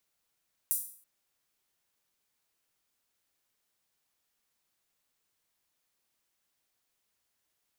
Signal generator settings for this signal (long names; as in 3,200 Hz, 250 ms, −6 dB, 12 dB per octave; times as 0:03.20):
open synth hi-hat length 0.33 s, high-pass 9,900 Hz, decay 0.49 s